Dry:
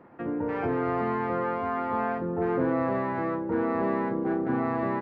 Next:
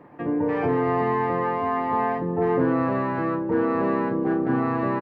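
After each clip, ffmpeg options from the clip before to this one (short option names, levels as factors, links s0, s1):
-af "bandreject=f=1400:w=9.1,aecho=1:1:6.8:0.39,volume=1.58"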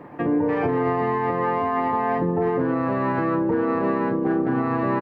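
-af "alimiter=limit=0.0891:level=0:latency=1:release=193,volume=2.24"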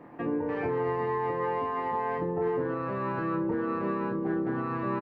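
-filter_complex "[0:a]asplit=2[s0][s1];[s1]adelay=25,volume=0.562[s2];[s0][s2]amix=inputs=2:normalize=0,volume=0.376"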